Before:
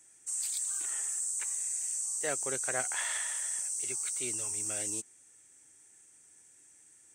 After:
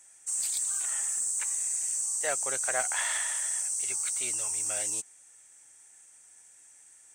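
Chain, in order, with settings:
low shelf with overshoot 490 Hz −8 dB, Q 1.5
in parallel at −5 dB: asymmetric clip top −30 dBFS

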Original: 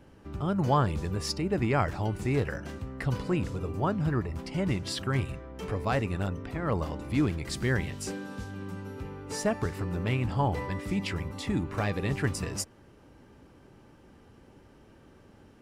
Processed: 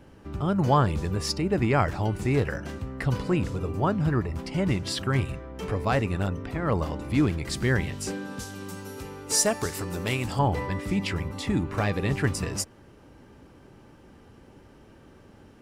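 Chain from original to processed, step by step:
0:08.39–0:10.39: bass and treble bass −6 dB, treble +14 dB
level +3.5 dB

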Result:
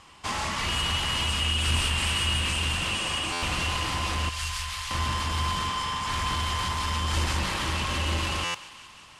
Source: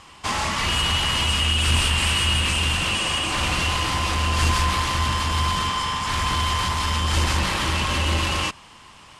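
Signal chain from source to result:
0:04.29–0:04.91: guitar amp tone stack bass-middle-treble 10-0-10
feedback echo with a high-pass in the loop 181 ms, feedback 72%, high-pass 650 Hz, level −15.5 dB
buffer that repeats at 0:03.32/0:08.44, samples 512, times 8
level −5.5 dB

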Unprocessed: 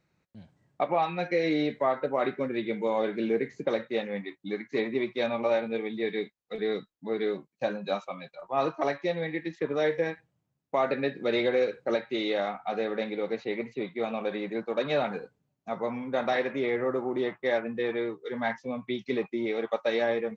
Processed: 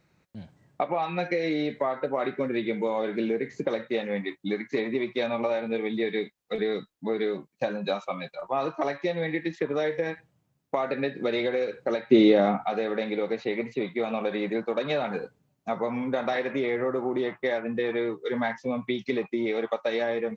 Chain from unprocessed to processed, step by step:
downward compressor, threshold −31 dBFS, peak gain reduction 10 dB
0:12.10–0:12.64: parametric band 200 Hz +14.5 dB 2.9 octaves
level +7 dB

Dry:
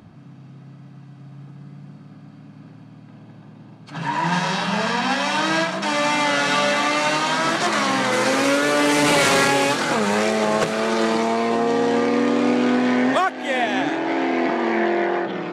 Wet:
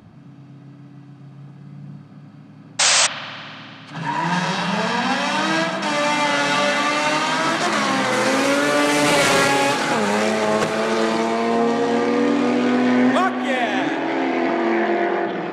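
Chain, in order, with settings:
sound drawn into the spectrogram noise, 0:02.79–0:03.07, 500–8,500 Hz −15 dBFS
spring reverb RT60 3.1 s, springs 56 ms, chirp 65 ms, DRR 8 dB

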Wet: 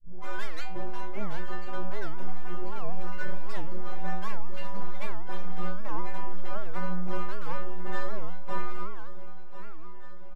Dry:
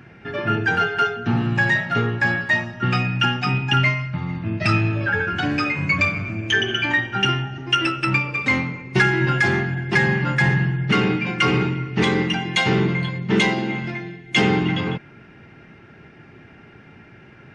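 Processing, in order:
turntable start at the beginning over 1.21 s
elliptic low-pass filter 1,100 Hz, stop band 50 dB
parametric band 780 Hz +9 dB 0.37 octaves
speech leveller within 5 dB 0.5 s
phase-vocoder stretch with locked phases 0.59×
two-band tremolo in antiphase 2.7 Hz, depth 50%, crossover 520 Hz
full-wave rectification
stiff-string resonator 180 Hz, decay 0.77 s, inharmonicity 0.008
repeating echo 1,042 ms, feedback 58%, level −13 dB
wow of a warped record 78 rpm, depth 250 cents
level +8.5 dB

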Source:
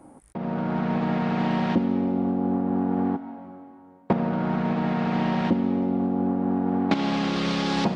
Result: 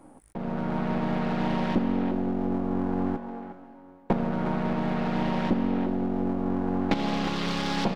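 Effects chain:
gain on one half-wave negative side −7 dB
far-end echo of a speakerphone 360 ms, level −8 dB

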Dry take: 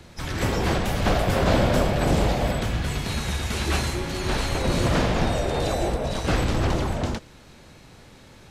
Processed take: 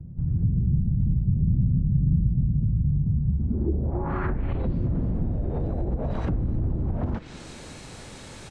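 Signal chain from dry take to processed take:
treble cut that deepens with the level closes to 320 Hz, closed at −19.5 dBFS
dynamic equaliser 530 Hz, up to −7 dB, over −42 dBFS, Q 0.78
in parallel at +2.5 dB: brickwall limiter −23 dBFS, peak gain reduction 9.5 dB
on the sum: downward compressor 2 to 1, threshold −23 dBFS, peak gain reduction 5 dB
on a send: echo with shifted repeats 303 ms, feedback 53%, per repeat +100 Hz, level −23 dB
on the sum: low-pass filter sweep 150 Hz → 8,800 Hz, 0:03.29–0:04.98
level −1.5 dB

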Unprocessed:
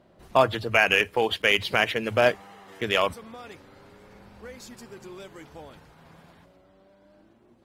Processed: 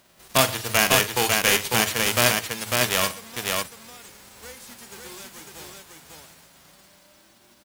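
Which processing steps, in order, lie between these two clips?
spectral envelope flattened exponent 0.3
multi-tap delay 42/120/549 ms −12.5/−20/−3 dB

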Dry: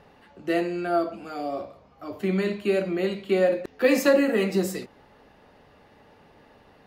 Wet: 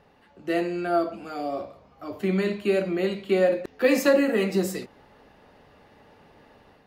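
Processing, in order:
automatic gain control gain up to 5 dB
level −4.5 dB

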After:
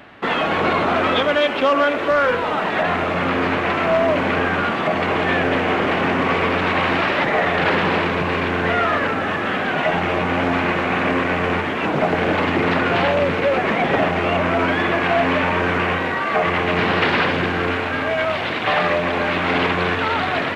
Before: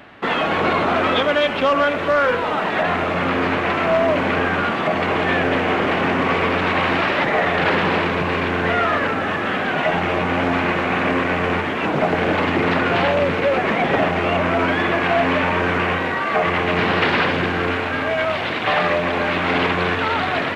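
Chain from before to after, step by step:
0:01.39–0:02.11: low shelf with overshoot 210 Hz −6.5 dB, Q 1.5

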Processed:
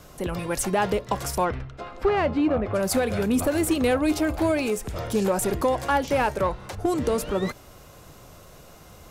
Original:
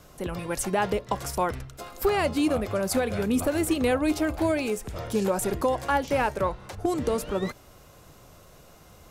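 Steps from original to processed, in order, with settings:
0:01.44–0:02.73: low-pass filter 3,300 Hz → 1,900 Hz 12 dB per octave
in parallel at −4.5 dB: soft clipping −28 dBFS, distortion −8 dB

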